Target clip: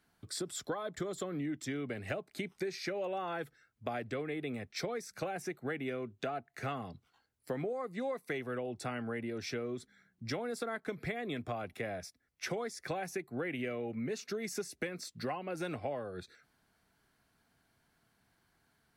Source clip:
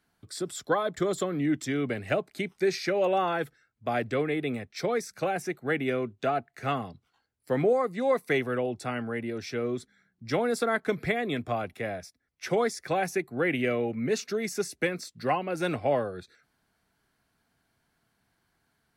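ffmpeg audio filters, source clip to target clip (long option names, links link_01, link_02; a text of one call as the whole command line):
ffmpeg -i in.wav -af "acompressor=threshold=-35dB:ratio=6" out.wav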